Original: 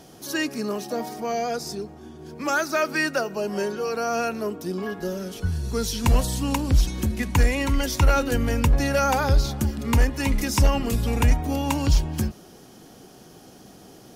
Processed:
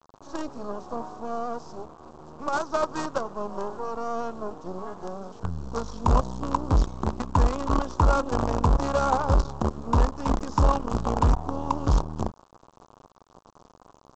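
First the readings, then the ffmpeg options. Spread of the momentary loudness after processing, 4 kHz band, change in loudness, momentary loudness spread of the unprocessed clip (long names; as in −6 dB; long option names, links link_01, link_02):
13 LU, −11.0 dB, −3.0 dB, 9 LU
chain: -af "aresample=16000,acrusher=bits=4:dc=4:mix=0:aa=0.000001,aresample=44100,highshelf=frequency=1500:width_type=q:width=3:gain=-10.5,volume=-3dB"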